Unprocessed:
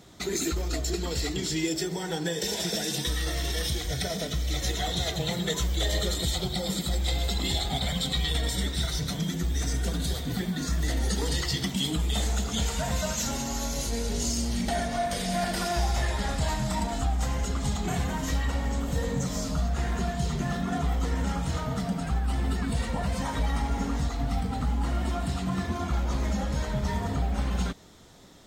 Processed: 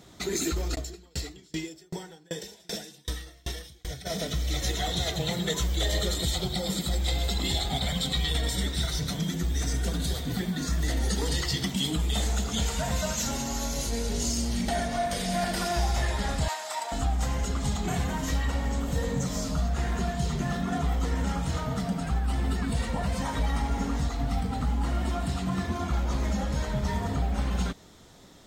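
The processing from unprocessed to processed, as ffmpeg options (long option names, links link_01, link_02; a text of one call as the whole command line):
ffmpeg -i in.wav -filter_complex "[0:a]asplit=3[link_01][link_02][link_03];[link_01]afade=type=out:start_time=0.74:duration=0.02[link_04];[link_02]aeval=exprs='val(0)*pow(10,-33*if(lt(mod(2.6*n/s,1),2*abs(2.6)/1000),1-mod(2.6*n/s,1)/(2*abs(2.6)/1000),(mod(2.6*n/s,1)-2*abs(2.6)/1000)/(1-2*abs(2.6)/1000))/20)':channel_layout=same,afade=type=in:start_time=0.74:duration=0.02,afade=type=out:start_time=4.05:duration=0.02[link_05];[link_03]afade=type=in:start_time=4.05:duration=0.02[link_06];[link_04][link_05][link_06]amix=inputs=3:normalize=0,asettb=1/sr,asplit=3[link_07][link_08][link_09];[link_07]atrim=end=16.484[link_10];[link_08]atrim=start=16.48:end=16.92,asetpts=PTS-STARTPTS,afade=type=in:duration=0.004:curve=qsin,afade=type=out:start_time=0.436:duration=0.004:curve=qsin,highpass=frequency=570:width=0.5412,highpass=frequency=570:width=1.3066[link_11];[link_09]atrim=start=16.916[link_12];[link_10][link_11]acrossfade=duration=0.004:curve1=hsin:curve2=qsin[link_13];[link_13][link_12]acrossfade=duration=0.004:curve1=qsin:curve2=hsin" out.wav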